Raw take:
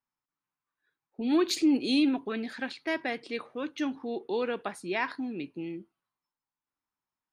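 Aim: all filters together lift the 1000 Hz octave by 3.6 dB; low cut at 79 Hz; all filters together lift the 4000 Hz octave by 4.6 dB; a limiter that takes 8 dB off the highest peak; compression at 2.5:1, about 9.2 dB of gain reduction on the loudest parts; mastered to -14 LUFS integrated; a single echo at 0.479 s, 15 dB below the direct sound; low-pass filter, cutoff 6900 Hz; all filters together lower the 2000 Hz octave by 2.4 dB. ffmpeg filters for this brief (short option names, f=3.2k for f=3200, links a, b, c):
-af "highpass=79,lowpass=6.9k,equalizer=f=1k:t=o:g=5.5,equalizer=f=2k:t=o:g=-6.5,equalizer=f=4k:t=o:g=7,acompressor=threshold=-34dB:ratio=2.5,alimiter=level_in=3dB:limit=-24dB:level=0:latency=1,volume=-3dB,aecho=1:1:479:0.178,volume=23.5dB"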